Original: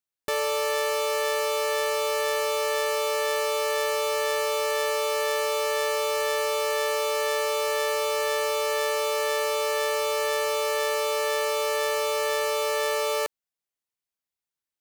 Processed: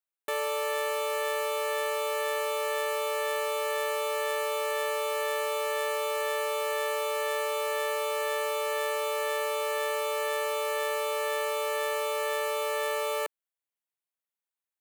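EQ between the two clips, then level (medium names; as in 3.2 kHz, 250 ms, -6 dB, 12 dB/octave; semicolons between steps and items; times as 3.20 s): high-pass 380 Hz 12 dB/octave; peaking EQ 5.2 kHz -11.5 dB 0.6 oct; -3.0 dB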